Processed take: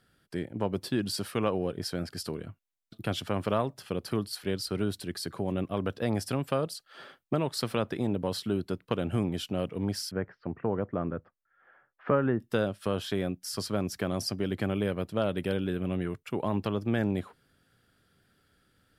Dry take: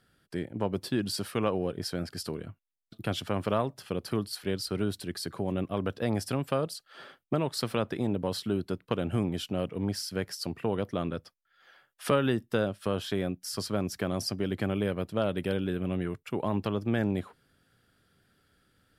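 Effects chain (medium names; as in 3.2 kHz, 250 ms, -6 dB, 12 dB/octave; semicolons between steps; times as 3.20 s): 10.11–12.40 s: low-pass 1.8 kHz 24 dB/octave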